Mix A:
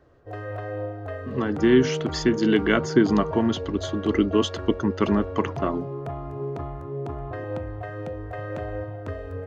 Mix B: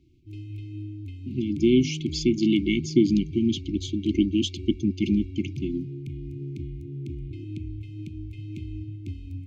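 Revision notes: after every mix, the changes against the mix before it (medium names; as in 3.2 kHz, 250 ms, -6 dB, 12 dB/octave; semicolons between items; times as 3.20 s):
master: add brick-wall FIR band-stop 380–2100 Hz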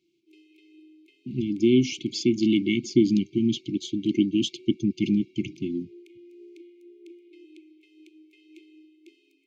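background: add rippled Chebyshev high-pass 320 Hz, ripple 6 dB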